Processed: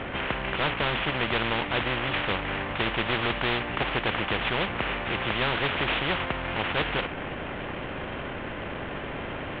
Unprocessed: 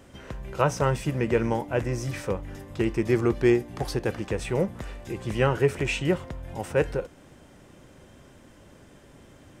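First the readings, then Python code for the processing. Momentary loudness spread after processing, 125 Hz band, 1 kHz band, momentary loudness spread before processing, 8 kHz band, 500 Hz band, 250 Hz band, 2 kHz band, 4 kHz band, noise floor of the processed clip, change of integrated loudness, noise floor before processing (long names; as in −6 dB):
9 LU, −5.0 dB, +4.5 dB, 14 LU, below −40 dB, −5.0 dB, −4.5 dB, +8.0 dB, +12.0 dB, −35 dBFS, −1.0 dB, −52 dBFS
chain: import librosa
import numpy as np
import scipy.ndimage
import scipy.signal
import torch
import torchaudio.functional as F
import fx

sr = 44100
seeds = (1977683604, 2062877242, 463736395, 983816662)

y = fx.cvsd(x, sr, bps=16000)
y = fx.spectral_comp(y, sr, ratio=4.0)
y = F.gain(torch.from_numpy(y), -1.5).numpy()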